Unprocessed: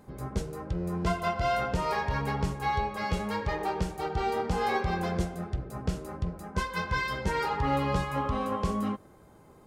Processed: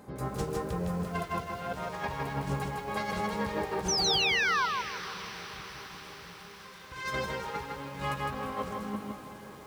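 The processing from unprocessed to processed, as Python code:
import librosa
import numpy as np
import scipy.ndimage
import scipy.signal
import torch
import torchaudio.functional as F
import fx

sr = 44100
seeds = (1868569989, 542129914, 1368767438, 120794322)

y = fx.self_delay(x, sr, depth_ms=0.16)
y = fx.highpass(y, sr, hz=110.0, slope=6)
y = fx.hum_notches(y, sr, base_hz=50, count=7)
y = fx.over_compress(y, sr, threshold_db=-35.0, ratio=-0.5)
y = fx.comb_fb(y, sr, f0_hz=400.0, decay_s=0.74, harmonics='all', damping=0.0, mix_pct=90, at=(4.43, 6.92))
y = fx.spec_paint(y, sr, seeds[0], shape='fall', start_s=3.88, length_s=0.78, low_hz=940.0, high_hz=6300.0, level_db=-29.0)
y = fx.echo_diffused(y, sr, ms=524, feedback_pct=67, wet_db=-13.5)
y = fx.echo_crushed(y, sr, ms=158, feedback_pct=35, bits=9, wet_db=-3.0)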